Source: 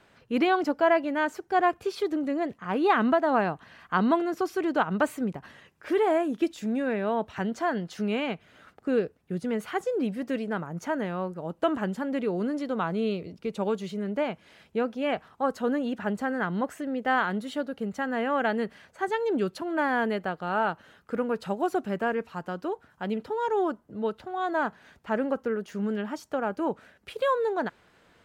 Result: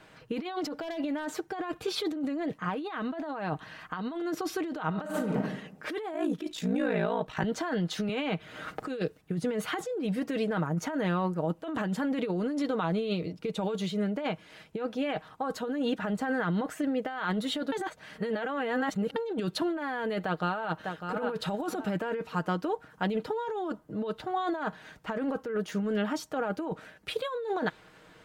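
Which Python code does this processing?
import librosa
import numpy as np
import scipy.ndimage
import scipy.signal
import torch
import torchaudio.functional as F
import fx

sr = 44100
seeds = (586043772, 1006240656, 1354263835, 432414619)

y = fx.clip_hard(x, sr, threshold_db=-20.0, at=(0.76, 1.43))
y = fx.reverb_throw(y, sr, start_s=4.86, length_s=0.52, rt60_s=0.84, drr_db=2.0)
y = fx.ring_mod(y, sr, carrier_hz=28.0, at=(6.13, 7.44))
y = fx.band_squash(y, sr, depth_pct=70, at=(8.09, 9.21))
y = fx.tremolo_shape(y, sr, shape='triangle', hz=5.3, depth_pct=35, at=(12.6, 17.07), fade=0.02)
y = fx.echo_throw(y, sr, start_s=20.22, length_s=0.96, ms=600, feedback_pct=20, wet_db=-9.5)
y = fx.edit(y, sr, fx.reverse_span(start_s=17.72, length_s=1.44), tone=tone)
y = y + 0.46 * np.pad(y, (int(6.4 * sr / 1000.0), 0))[:len(y)]
y = fx.dynamic_eq(y, sr, hz=3700.0, q=3.7, threshold_db=-57.0, ratio=4.0, max_db=7)
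y = fx.over_compress(y, sr, threshold_db=-31.0, ratio=-1.0)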